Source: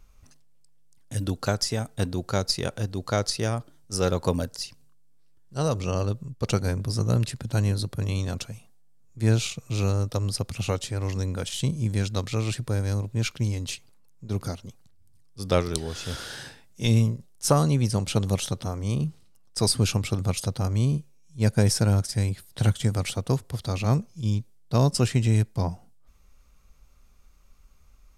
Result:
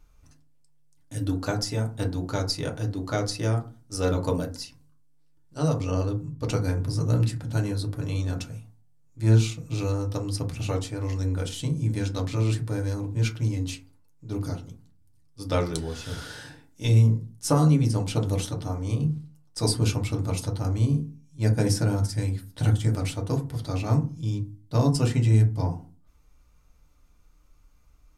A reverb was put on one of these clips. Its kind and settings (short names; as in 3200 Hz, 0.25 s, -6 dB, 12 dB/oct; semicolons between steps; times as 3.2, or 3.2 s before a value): FDN reverb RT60 0.34 s, low-frequency decay 1.5×, high-frequency decay 0.4×, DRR 0.5 dB; gain -5 dB